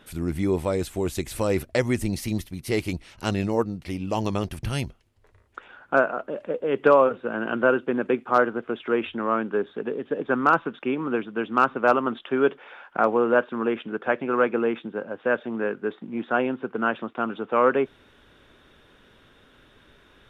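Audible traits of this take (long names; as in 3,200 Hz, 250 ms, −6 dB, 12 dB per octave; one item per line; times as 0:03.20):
background noise floor −57 dBFS
spectral slope −2.5 dB per octave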